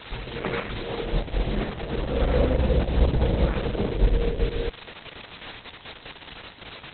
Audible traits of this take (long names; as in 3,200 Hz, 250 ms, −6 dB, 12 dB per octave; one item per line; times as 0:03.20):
a quantiser's noise floor 6 bits, dither triangular
tremolo saw up 4.9 Hz, depth 35%
Opus